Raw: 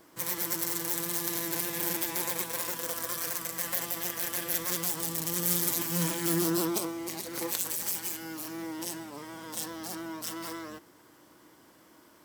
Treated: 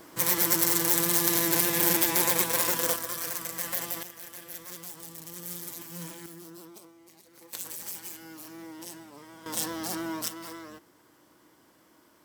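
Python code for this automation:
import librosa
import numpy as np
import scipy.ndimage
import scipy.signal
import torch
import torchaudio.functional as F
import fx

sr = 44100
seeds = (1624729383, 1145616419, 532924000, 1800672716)

y = fx.gain(x, sr, db=fx.steps((0.0, 7.5), (2.96, 0.0), (4.03, -11.0), (6.26, -19.0), (7.53, -6.0), (9.46, 5.0), (10.28, -3.0)))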